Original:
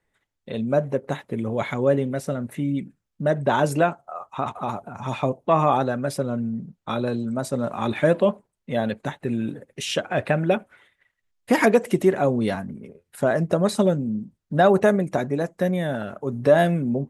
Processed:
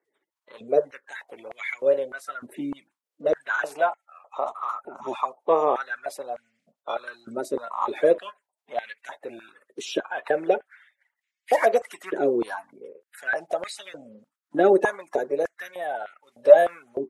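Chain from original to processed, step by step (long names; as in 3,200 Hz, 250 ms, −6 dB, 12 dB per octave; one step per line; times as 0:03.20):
spectral magnitudes quantised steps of 30 dB
high-pass on a step sequencer 3.3 Hz 360–2,100 Hz
level −6 dB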